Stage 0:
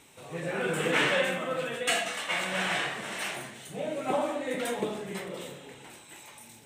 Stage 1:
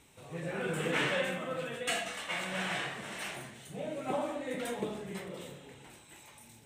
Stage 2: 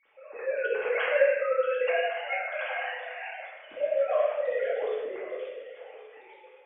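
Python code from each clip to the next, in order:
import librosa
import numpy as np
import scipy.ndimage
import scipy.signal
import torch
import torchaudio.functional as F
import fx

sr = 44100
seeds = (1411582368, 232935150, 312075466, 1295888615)

y1 = fx.low_shelf(x, sr, hz=120.0, db=12.0)
y1 = y1 * 10.0 ** (-6.0 / 20.0)
y2 = fx.sine_speech(y1, sr)
y2 = y2 + 10.0 ** (-18.0 / 20.0) * np.pad(y2, (int(1116 * sr / 1000.0), 0))[:len(y2)]
y2 = fx.room_shoebox(y2, sr, seeds[0], volume_m3=350.0, walls='mixed', distance_m=2.3)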